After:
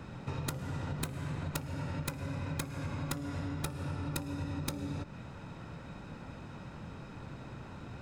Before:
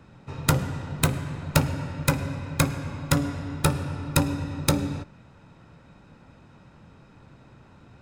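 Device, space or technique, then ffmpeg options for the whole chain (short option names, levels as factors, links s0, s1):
serial compression, peaks first: -af "acompressor=threshold=0.0224:ratio=5,acompressor=threshold=0.00794:ratio=2.5,volume=1.88"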